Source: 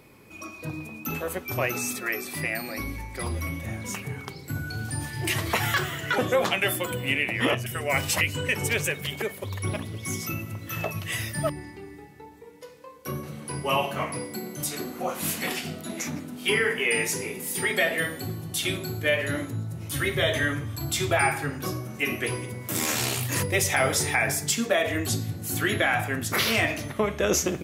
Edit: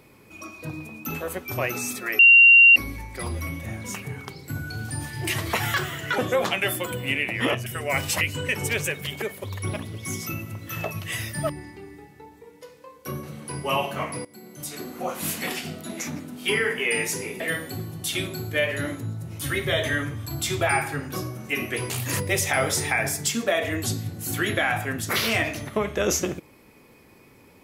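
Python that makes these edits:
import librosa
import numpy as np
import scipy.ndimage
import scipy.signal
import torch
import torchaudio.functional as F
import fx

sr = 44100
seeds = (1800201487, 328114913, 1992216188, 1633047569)

y = fx.edit(x, sr, fx.bleep(start_s=2.19, length_s=0.57, hz=2760.0, db=-8.5),
    fx.fade_in_from(start_s=14.25, length_s=0.78, floor_db=-17.5),
    fx.cut(start_s=17.4, length_s=0.5),
    fx.cut(start_s=22.4, length_s=0.73), tone=tone)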